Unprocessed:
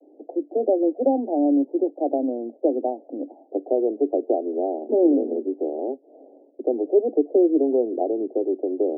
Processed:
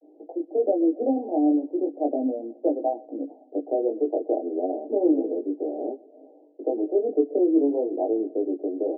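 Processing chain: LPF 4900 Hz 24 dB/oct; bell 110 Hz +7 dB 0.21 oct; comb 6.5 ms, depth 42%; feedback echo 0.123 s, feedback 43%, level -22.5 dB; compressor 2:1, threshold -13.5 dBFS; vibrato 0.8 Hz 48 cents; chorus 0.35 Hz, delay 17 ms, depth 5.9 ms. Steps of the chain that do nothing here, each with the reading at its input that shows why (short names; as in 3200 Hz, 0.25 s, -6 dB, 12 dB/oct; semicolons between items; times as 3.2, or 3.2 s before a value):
LPF 4900 Hz: input band ends at 850 Hz; bell 110 Hz: input band starts at 210 Hz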